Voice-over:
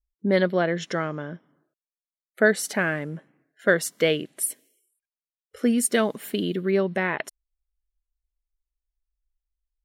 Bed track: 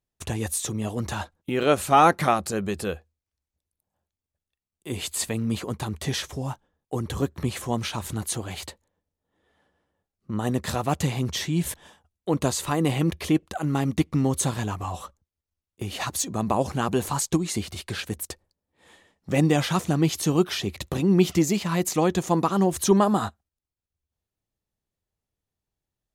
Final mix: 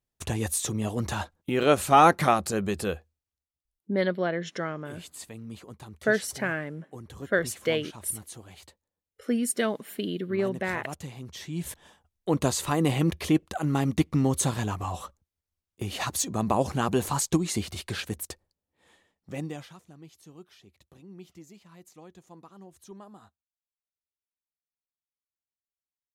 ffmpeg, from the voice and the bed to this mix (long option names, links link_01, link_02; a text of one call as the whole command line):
ffmpeg -i stem1.wav -i stem2.wav -filter_complex "[0:a]adelay=3650,volume=-5dB[link_01];[1:a]volume=13dB,afade=type=out:start_time=3.07:duration=0.45:silence=0.199526,afade=type=in:start_time=11.31:duration=0.96:silence=0.211349,afade=type=out:start_time=17.84:duration=1.93:silence=0.0473151[link_02];[link_01][link_02]amix=inputs=2:normalize=0" out.wav